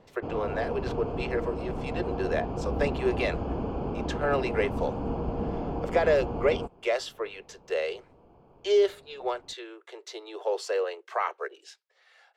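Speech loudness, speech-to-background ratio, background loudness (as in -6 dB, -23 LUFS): -30.0 LUFS, 3.5 dB, -33.5 LUFS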